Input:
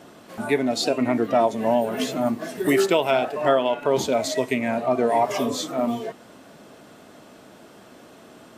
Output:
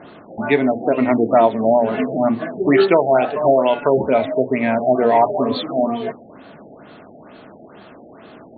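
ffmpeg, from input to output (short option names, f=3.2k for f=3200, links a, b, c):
-af "bandreject=f=60:t=h:w=6,bandreject=f=120:t=h:w=6,bandreject=f=180:t=h:w=6,bandreject=f=240:t=h:w=6,bandreject=f=300:t=h:w=6,bandreject=f=360:t=h:w=6,bandreject=f=420:t=h:w=6,bandreject=f=480:t=h:w=6,bandreject=f=540:t=h:w=6,afftfilt=real='re*lt(b*sr/1024,810*pow(4600/810,0.5+0.5*sin(2*PI*2.2*pts/sr)))':imag='im*lt(b*sr/1024,810*pow(4600/810,0.5+0.5*sin(2*PI*2.2*pts/sr)))':win_size=1024:overlap=0.75,volume=6.5dB"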